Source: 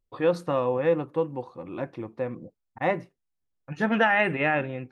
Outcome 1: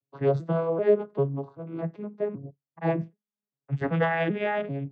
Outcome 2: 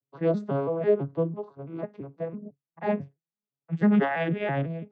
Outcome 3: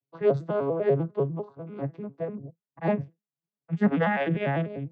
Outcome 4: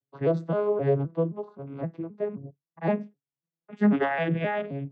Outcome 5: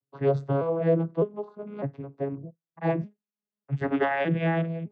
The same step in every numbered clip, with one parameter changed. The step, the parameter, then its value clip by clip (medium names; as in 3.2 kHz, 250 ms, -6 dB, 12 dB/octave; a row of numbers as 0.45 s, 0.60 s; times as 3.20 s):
vocoder on a broken chord, a note every: 390 ms, 166 ms, 99 ms, 261 ms, 606 ms